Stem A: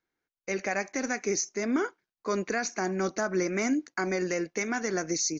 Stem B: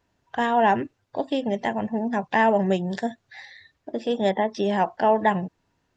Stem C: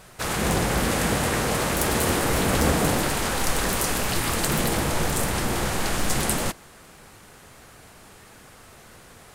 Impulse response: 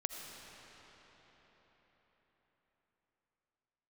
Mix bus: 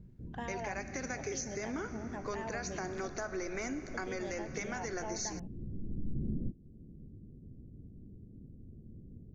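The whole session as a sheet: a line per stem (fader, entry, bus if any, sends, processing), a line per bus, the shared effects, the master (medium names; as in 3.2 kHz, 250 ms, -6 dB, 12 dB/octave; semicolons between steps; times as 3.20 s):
-5.5 dB, 0.00 s, bus A, send -6 dB, high-pass 300 Hz 12 dB/octave
-15.0 dB, 0.00 s, bus A, no send, none
+3.0 dB, 0.00 s, no bus, no send, inverse Chebyshev low-pass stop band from 980 Hz, stop band 60 dB; peak limiter -20.5 dBFS, peak gain reduction 7.5 dB; auto duck -18 dB, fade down 0.35 s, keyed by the second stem
bus A: 0.0 dB, compression 2:1, threshold -37 dBFS, peak gain reduction 6 dB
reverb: on, RT60 5.0 s, pre-delay 40 ms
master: compression 2:1, threshold -38 dBFS, peak gain reduction 9.5 dB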